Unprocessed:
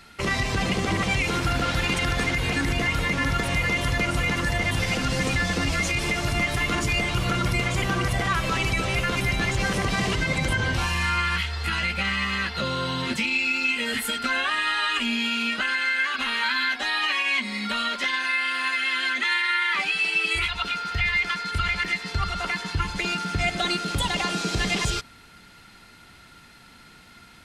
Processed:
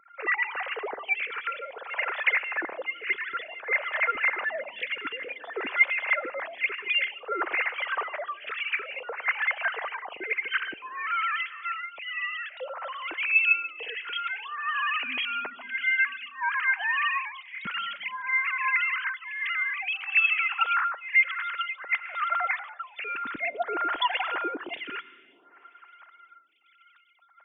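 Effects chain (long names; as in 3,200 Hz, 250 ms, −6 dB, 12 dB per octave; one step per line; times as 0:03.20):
three sine waves on the formant tracks
convolution reverb RT60 2.8 s, pre-delay 89 ms, DRR 18 dB
phaser with staggered stages 0.55 Hz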